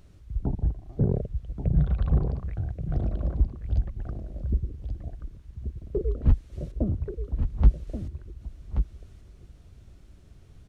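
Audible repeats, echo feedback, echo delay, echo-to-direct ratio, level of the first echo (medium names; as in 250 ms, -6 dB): 1, no regular repeats, 1130 ms, -8.0 dB, -8.0 dB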